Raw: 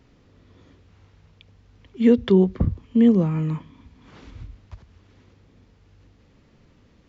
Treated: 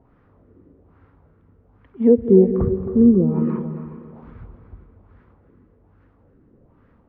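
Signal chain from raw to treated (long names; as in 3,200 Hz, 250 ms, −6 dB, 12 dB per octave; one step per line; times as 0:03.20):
auto-filter low-pass sine 1.2 Hz 330–1,500 Hz
echo with a time of its own for lows and highs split 440 Hz, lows 187 ms, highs 269 ms, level −12 dB
reverb whose tail is shaped and stops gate 460 ms rising, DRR 10 dB
level −1 dB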